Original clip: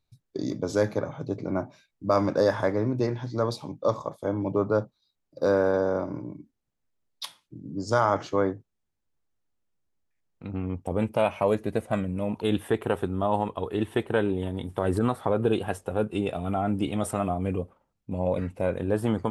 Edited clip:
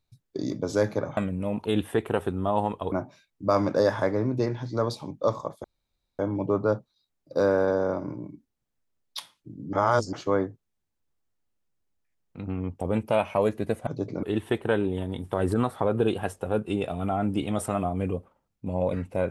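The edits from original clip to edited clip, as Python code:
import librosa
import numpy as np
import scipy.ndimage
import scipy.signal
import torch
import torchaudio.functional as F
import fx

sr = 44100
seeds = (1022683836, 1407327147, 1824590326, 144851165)

y = fx.edit(x, sr, fx.swap(start_s=1.17, length_s=0.36, other_s=11.93, other_length_s=1.75),
    fx.insert_room_tone(at_s=4.25, length_s=0.55),
    fx.reverse_span(start_s=7.79, length_s=0.4), tone=tone)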